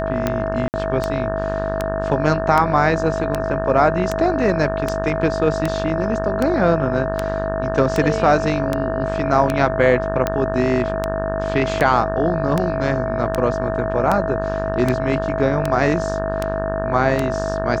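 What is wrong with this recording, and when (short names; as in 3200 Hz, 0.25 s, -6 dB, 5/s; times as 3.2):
buzz 50 Hz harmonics 36 -26 dBFS
tick 78 rpm -6 dBFS
tone 650 Hz -23 dBFS
0.68–0.74 gap 59 ms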